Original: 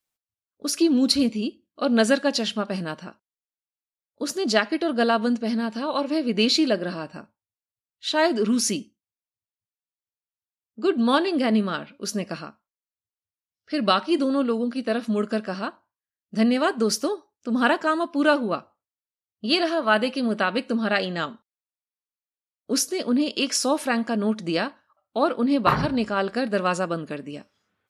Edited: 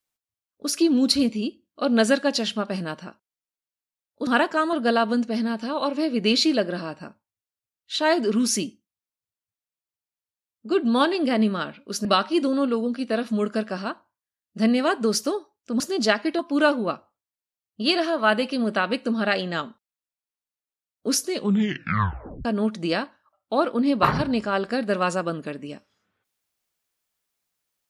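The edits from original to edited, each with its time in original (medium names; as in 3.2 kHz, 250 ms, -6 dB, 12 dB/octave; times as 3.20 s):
4.27–4.86 s: swap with 17.57–18.03 s
12.18–13.82 s: delete
22.94 s: tape stop 1.15 s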